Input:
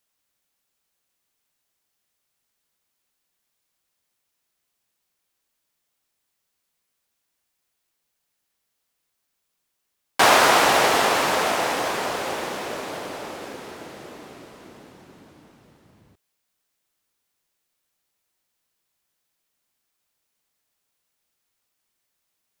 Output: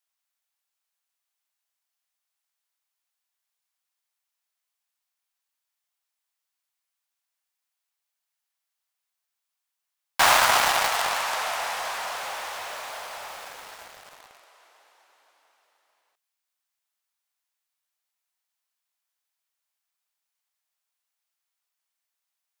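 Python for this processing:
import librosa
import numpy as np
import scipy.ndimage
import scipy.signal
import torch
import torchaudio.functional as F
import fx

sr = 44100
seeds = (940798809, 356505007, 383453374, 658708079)

p1 = scipy.signal.sosfilt(scipy.signal.butter(4, 690.0, 'highpass', fs=sr, output='sos'), x)
p2 = fx.quant_companded(p1, sr, bits=2)
p3 = p1 + (p2 * librosa.db_to_amplitude(-8.0))
y = p3 * librosa.db_to_amplitude(-7.0)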